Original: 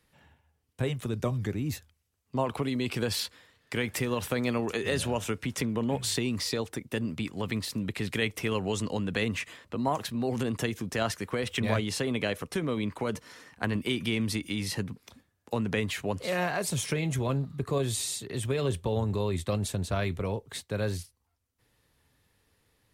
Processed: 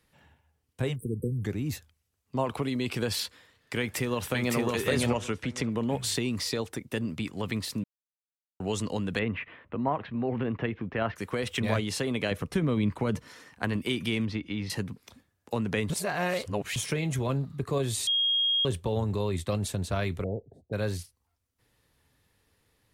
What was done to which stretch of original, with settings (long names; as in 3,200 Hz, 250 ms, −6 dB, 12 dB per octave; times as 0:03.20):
0:00.96–0:01.44: time-frequency box erased 510–8,000 Hz
0:03.78–0:04.57: delay throw 560 ms, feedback 15%, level −1 dB
0:05.07–0:05.72: low-pass filter 7,400 Hz
0:07.84–0:08.60: silence
0:09.19–0:11.16: inverse Chebyshev low-pass filter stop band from 8,000 Hz, stop band 60 dB
0:12.31–0:13.28: bass and treble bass +8 dB, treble −4 dB
0:14.25–0:14.70: high-frequency loss of the air 240 metres
0:15.90–0:16.76: reverse
0:18.07–0:18.65: beep over 3,260 Hz −22.5 dBFS
0:20.24–0:20.73: elliptic low-pass filter 700 Hz